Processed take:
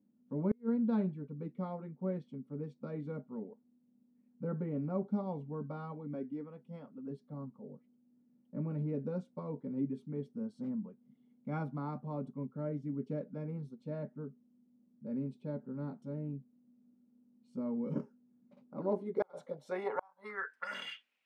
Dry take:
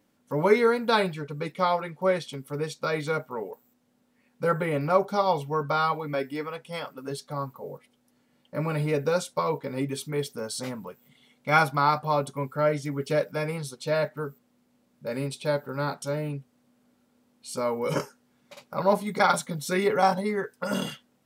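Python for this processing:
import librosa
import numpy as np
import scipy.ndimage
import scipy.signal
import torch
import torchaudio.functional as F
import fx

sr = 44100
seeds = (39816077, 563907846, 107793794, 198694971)

y = fx.filter_sweep_bandpass(x, sr, from_hz=220.0, to_hz=2500.0, start_s=18.57, end_s=20.97, q=4.4)
y = fx.gate_flip(y, sr, shuts_db=-23.0, range_db=-37)
y = y * librosa.db_to_amplitude(3.0)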